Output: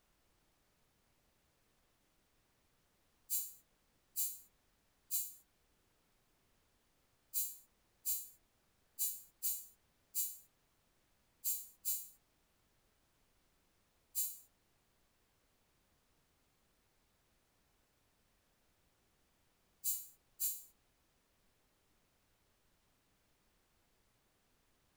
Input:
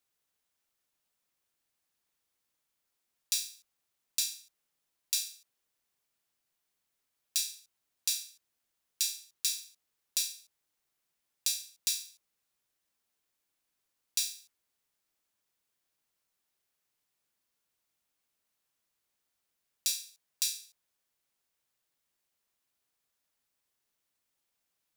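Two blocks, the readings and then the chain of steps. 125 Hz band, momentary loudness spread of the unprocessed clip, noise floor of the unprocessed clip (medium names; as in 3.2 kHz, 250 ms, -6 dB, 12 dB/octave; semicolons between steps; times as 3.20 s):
no reading, 11 LU, -83 dBFS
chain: frequency axis rescaled in octaves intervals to 123%; added noise pink -74 dBFS; trim -2 dB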